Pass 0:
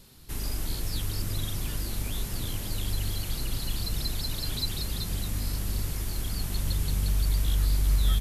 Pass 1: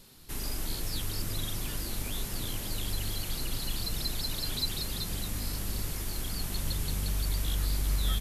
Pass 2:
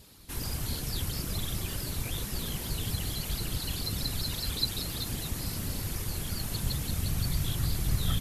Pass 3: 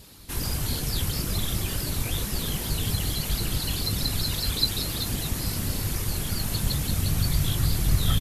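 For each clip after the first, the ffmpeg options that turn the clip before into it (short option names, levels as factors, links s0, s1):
-af "equalizer=f=65:w=0.53:g=-6.5"
-af "afftfilt=real='hypot(re,im)*cos(2*PI*random(0))':imag='hypot(re,im)*sin(2*PI*random(1))':win_size=512:overlap=0.75,volume=2.11"
-filter_complex "[0:a]asplit=2[s0][s1];[s1]adelay=20,volume=0.251[s2];[s0][s2]amix=inputs=2:normalize=0,volume=1.88"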